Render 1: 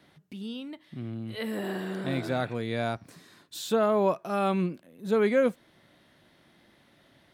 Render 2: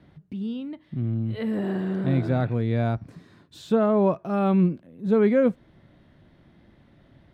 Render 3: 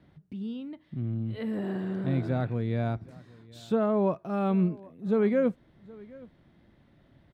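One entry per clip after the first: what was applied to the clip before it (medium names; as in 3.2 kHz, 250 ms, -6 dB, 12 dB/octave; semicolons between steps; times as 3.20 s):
RIAA curve playback
delay 771 ms -22.5 dB; trim -5 dB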